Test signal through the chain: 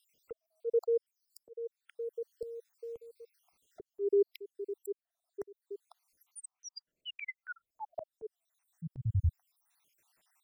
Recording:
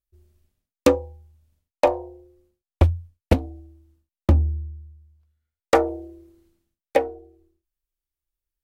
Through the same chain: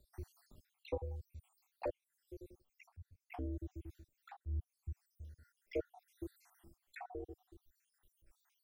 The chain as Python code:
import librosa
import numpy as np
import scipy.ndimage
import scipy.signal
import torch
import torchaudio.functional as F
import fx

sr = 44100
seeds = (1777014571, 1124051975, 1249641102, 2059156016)

y = fx.spec_dropout(x, sr, seeds[0], share_pct=73)
y = fx.auto_swell(y, sr, attack_ms=795.0)
y = fx.band_squash(y, sr, depth_pct=40)
y = y * librosa.db_to_amplitude(12.0)